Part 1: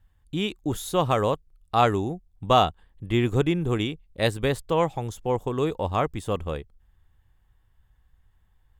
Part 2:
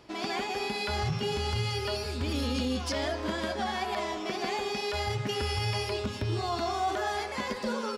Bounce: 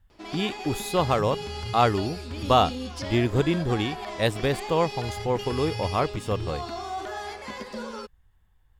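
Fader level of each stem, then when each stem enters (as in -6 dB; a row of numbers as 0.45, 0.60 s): -0.5, -3.5 dB; 0.00, 0.10 s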